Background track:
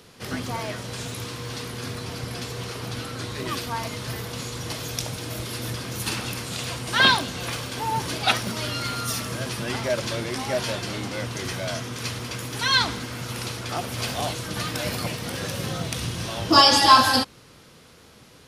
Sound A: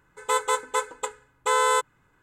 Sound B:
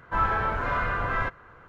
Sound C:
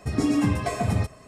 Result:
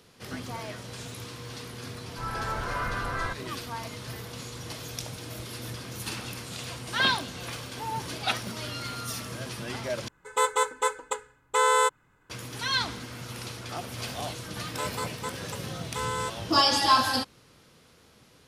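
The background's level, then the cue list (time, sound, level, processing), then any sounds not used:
background track -7 dB
2.04 add B -4.5 dB + opening faded in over 0.50 s
10.08 replace with A -0.5 dB
14.49 add A -10.5 dB
not used: C

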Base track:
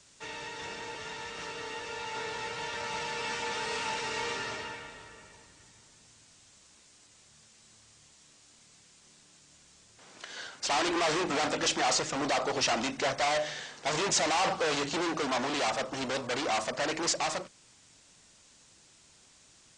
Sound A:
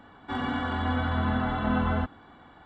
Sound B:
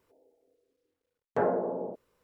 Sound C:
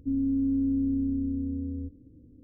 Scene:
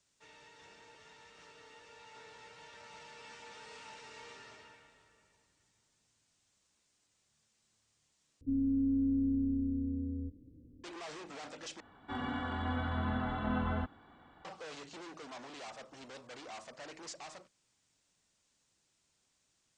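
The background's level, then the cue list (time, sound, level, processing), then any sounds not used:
base track -17.5 dB
8.41 replace with C -4.5 dB
11.8 replace with A -8 dB
not used: B

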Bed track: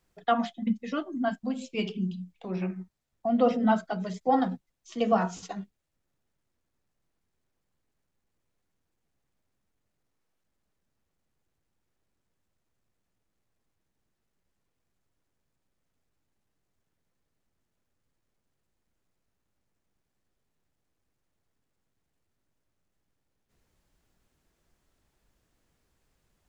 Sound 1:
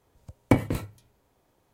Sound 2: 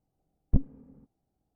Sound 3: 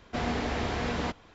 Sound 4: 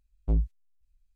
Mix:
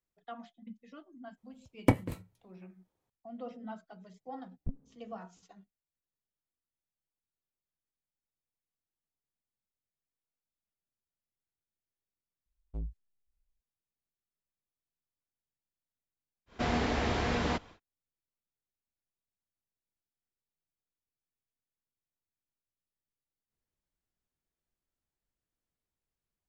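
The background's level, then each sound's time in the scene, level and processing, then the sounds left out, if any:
bed track -20 dB
1.37 add 1 -3.5 dB + upward expander, over -40 dBFS
4.13 add 2 -13.5 dB
12.46 add 4 -13.5 dB
16.46 add 3, fades 0.10 s

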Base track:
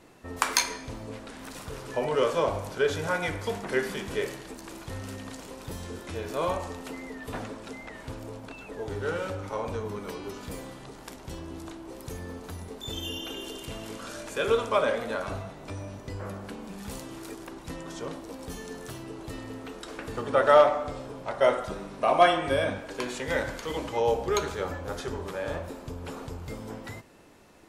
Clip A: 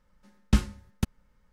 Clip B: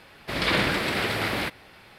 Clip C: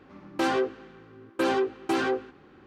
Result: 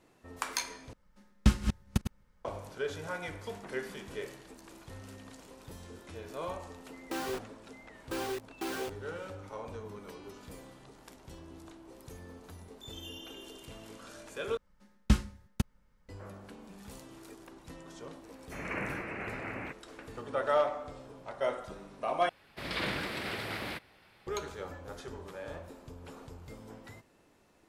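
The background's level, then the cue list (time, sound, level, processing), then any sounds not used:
base track -10 dB
0.93 replace with A -2 dB + reverse delay 0.217 s, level -7.5 dB
6.72 add C -11.5 dB + bit-crush 5-bit
14.57 replace with A -3 dB
18.23 add B -12.5 dB + steep low-pass 2700 Hz 96 dB/oct
22.29 replace with B -11 dB

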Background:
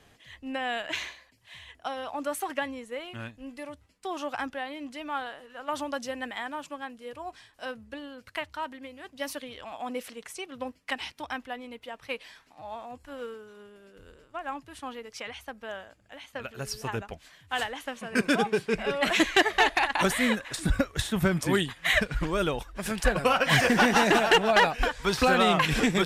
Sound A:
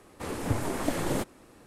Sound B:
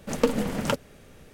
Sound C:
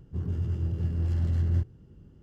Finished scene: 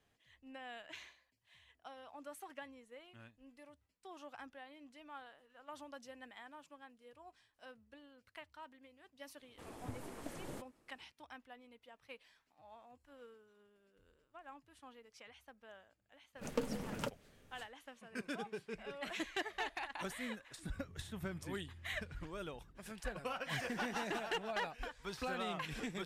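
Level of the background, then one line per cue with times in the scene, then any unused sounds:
background -18.5 dB
9.38 add A -18 dB
16.34 add B -14.5 dB, fades 0.05 s
20.63 add C -14 dB + compressor, threshold -40 dBFS

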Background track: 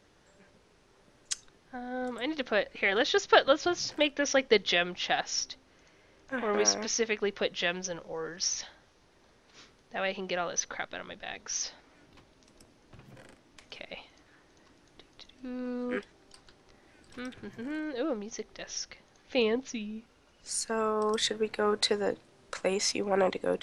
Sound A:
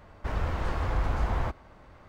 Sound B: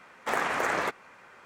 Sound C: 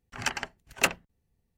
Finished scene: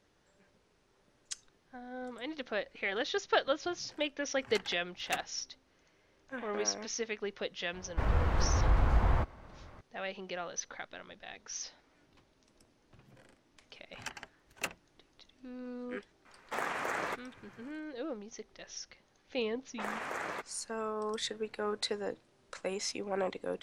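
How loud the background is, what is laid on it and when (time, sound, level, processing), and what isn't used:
background track -7.5 dB
4.29 add C -13.5 dB
7.73 add A -1 dB + tone controls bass +2 dB, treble -4 dB
13.8 add C -13 dB
16.25 add B -7.5 dB
19.51 add B -10.5 dB + low-pass opened by the level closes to 450 Hz, open at -25.5 dBFS

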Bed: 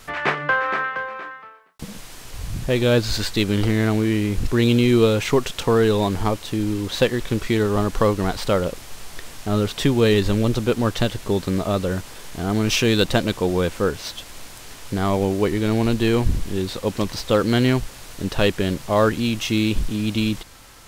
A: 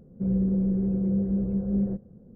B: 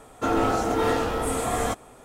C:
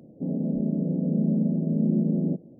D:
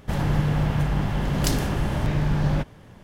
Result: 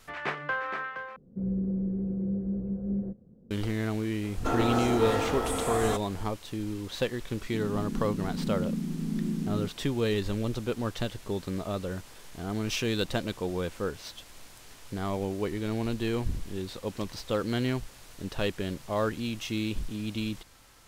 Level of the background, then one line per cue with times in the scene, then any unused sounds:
bed -11 dB
1.16 replace with A -7 dB + bell 280 Hz +3 dB 1.1 oct
4.23 add B -4 dB + limiter -14.5 dBFS
7.32 add C -7.5 dB + Butterworth band-stop 650 Hz, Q 1
not used: D

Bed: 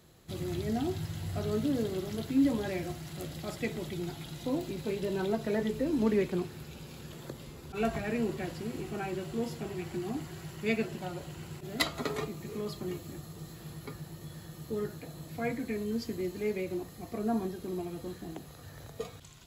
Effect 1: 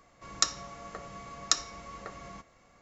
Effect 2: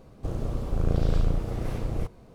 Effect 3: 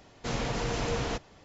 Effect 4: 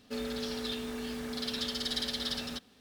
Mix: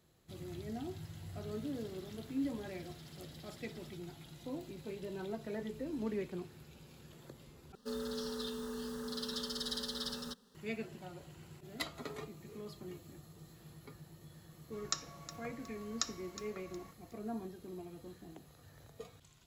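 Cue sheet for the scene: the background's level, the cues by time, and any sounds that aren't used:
bed -10.5 dB
1.38 add 4 -14 dB + compressor 10:1, threshold -42 dBFS
7.75 replace with 4 -2 dB + fixed phaser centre 460 Hz, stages 8
14.5 add 1 -10.5 dB + lo-fi delay 0.364 s, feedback 35%, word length 7-bit, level -13.5 dB
not used: 2, 3

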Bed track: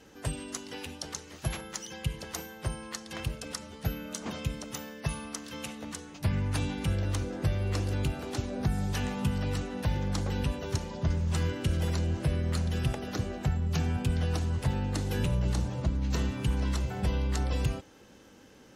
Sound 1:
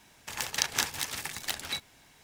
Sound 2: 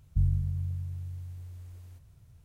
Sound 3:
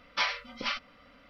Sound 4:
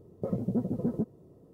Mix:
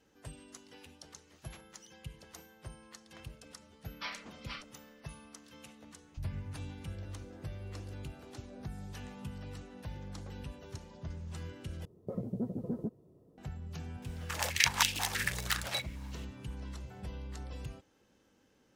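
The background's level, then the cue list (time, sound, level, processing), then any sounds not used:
bed track -14 dB
3.84 add 3 -12.5 dB
6.01 add 2 -16.5 dB
11.85 replace with 4 -6.5 dB
14.02 add 1 -2 dB + stepped high-pass 6.2 Hz 440–2800 Hz

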